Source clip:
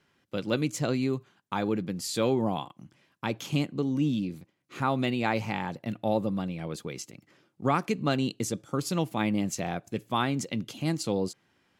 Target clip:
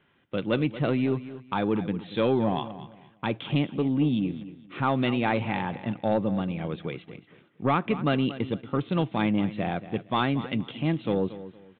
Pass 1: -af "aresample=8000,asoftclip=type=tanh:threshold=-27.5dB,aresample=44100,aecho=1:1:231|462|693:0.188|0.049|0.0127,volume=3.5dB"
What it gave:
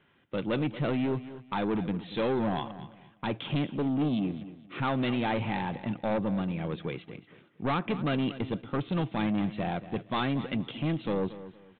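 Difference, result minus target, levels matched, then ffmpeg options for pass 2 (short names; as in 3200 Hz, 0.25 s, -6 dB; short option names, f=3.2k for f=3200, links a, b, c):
soft clip: distortion +11 dB
-af "aresample=8000,asoftclip=type=tanh:threshold=-17.5dB,aresample=44100,aecho=1:1:231|462|693:0.188|0.049|0.0127,volume=3.5dB"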